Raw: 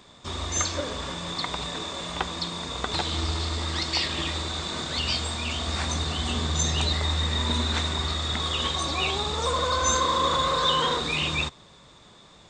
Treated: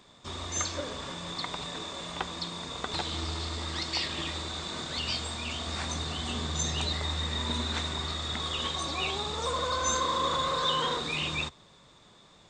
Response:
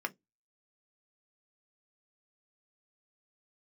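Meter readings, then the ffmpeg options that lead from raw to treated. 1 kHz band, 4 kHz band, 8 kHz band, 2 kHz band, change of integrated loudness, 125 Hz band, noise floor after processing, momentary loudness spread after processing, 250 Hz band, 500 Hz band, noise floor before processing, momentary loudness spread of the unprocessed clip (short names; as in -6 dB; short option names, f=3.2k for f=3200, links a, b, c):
-5.0 dB, -5.0 dB, -5.0 dB, -5.0 dB, -5.0 dB, -7.0 dB, -57 dBFS, 9 LU, -5.0 dB, -5.0 dB, -52 dBFS, 8 LU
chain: -af "equalizer=f=65:w=4.7:g=-9.5,volume=-5dB"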